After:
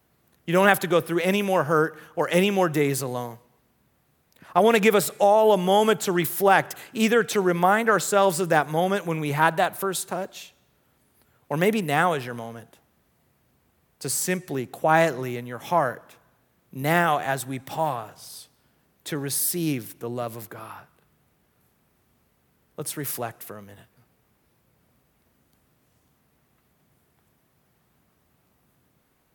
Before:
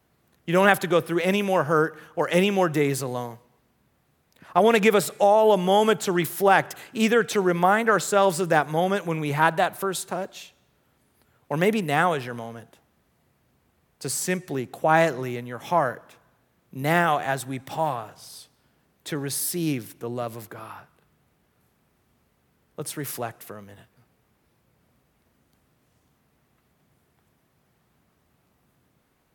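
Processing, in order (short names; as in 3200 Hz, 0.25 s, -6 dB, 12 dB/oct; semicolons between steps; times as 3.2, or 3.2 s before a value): high shelf 12000 Hz +7.5 dB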